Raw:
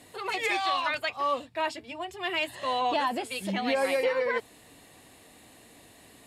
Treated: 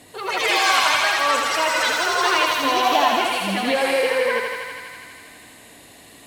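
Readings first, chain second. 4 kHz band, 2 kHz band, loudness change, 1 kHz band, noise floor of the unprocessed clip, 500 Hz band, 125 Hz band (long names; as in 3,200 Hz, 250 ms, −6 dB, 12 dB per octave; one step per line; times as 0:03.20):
+13.0 dB, +12.0 dB, +10.0 dB, +10.0 dB, −55 dBFS, +7.0 dB, can't be measured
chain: delay with pitch and tempo change per echo 169 ms, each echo +6 semitones, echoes 3
feedback echo with a high-pass in the loop 81 ms, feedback 83%, high-pass 400 Hz, level −4 dB
level +5.5 dB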